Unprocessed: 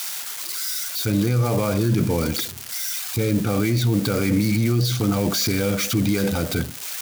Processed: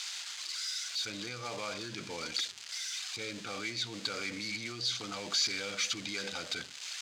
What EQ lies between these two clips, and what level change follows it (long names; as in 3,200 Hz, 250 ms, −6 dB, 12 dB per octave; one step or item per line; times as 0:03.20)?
resonant band-pass 6,700 Hz, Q 0.9
high-frequency loss of the air 160 metres
notch filter 5,600 Hz, Q 16
+4.5 dB